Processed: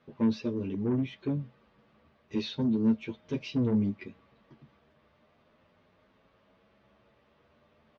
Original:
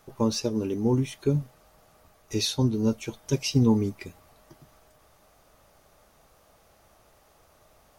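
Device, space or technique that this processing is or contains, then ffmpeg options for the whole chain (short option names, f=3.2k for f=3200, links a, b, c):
barber-pole flanger into a guitar amplifier: -filter_complex "[0:a]asplit=2[a][b];[b]adelay=9.6,afreqshift=0.37[c];[a][c]amix=inputs=2:normalize=1,asoftclip=type=tanh:threshold=-24.5dB,highpass=83,equalizer=f=220:t=q:w=4:g=8,equalizer=f=760:t=q:w=4:g=-9,equalizer=f=1.3k:t=q:w=4:g=-4,lowpass=f=3.5k:w=0.5412,lowpass=f=3.5k:w=1.3066"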